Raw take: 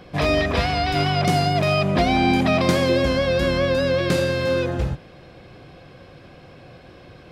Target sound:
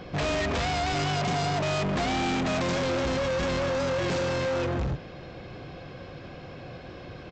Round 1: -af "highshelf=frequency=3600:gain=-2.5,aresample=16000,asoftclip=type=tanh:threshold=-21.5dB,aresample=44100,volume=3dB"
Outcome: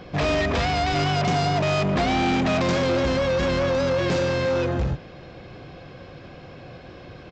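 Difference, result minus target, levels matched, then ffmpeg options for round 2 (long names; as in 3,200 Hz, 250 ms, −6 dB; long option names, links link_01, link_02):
soft clipping: distortion −4 dB
-af "highshelf=frequency=3600:gain=-2.5,aresample=16000,asoftclip=type=tanh:threshold=-28.5dB,aresample=44100,volume=3dB"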